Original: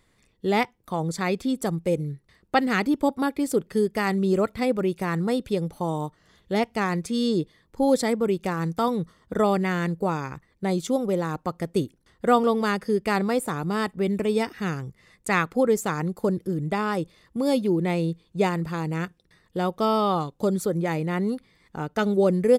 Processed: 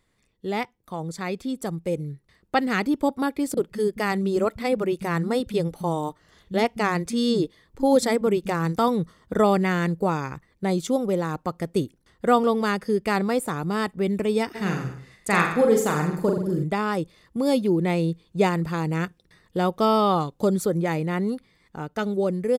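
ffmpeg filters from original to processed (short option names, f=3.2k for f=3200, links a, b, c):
-filter_complex "[0:a]asettb=1/sr,asplit=3[a][b][c];[a]atrim=end=3.544[d];[b]atrim=start=3.54:end=8.76,asetpts=PTS-STARTPTS,afade=t=in:d=0.004:c=qsin,afade=t=out:st=5.216:d=0.004:c=qsin,acrossover=split=200[e][f];[f]adelay=30[g];[e][g]amix=inputs=2:normalize=0,atrim=end_sample=230202[h];[c]atrim=start=8.756[i];[d][h]acrossfade=d=0.004:c1=hsin:c2=qsin[j];[j][i]acrossfade=d=0.004:c1=qsin:c2=hsin,asplit=3[k][l][m];[k]afade=t=out:st=14.54:d=0.02[n];[l]aecho=1:1:40|84|132.4|185.6|244.2:0.631|0.398|0.251|0.158|0.1,afade=t=in:st=14.54:d=0.02,afade=t=out:st=16.63:d=0.02[o];[m]afade=t=in:st=16.63:d=0.02[p];[n][o][p]amix=inputs=3:normalize=0,dynaudnorm=f=590:g=7:m=9.5dB,volume=-5dB"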